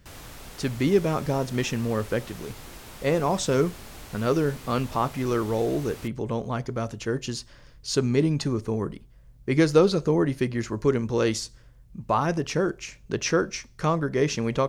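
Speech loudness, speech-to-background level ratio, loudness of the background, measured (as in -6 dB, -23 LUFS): -26.0 LUFS, 17.5 dB, -43.5 LUFS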